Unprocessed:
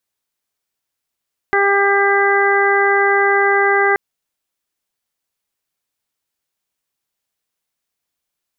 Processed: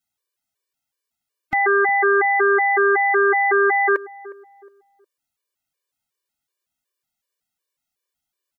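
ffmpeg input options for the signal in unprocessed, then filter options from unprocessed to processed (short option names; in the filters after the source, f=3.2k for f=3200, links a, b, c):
-f lavfi -i "aevalsrc='0.158*sin(2*PI*399*t)+0.126*sin(2*PI*798*t)+0.0944*sin(2*PI*1197*t)+0.133*sin(2*PI*1596*t)+0.126*sin(2*PI*1995*t)':d=2.43:s=44100"
-filter_complex "[0:a]asplit=2[a][b];[b]adelay=361,lowpass=f=830:p=1,volume=-17dB,asplit=2[c][d];[d]adelay=361,lowpass=f=830:p=1,volume=0.4,asplit=2[e][f];[f]adelay=361,lowpass=f=830:p=1,volume=0.4[g];[a][c][e][g]amix=inputs=4:normalize=0,afftfilt=real='re*gt(sin(2*PI*2.7*pts/sr)*(1-2*mod(floor(b*sr/1024/310),2)),0)':imag='im*gt(sin(2*PI*2.7*pts/sr)*(1-2*mod(floor(b*sr/1024/310),2)),0)':win_size=1024:overlap=0.75"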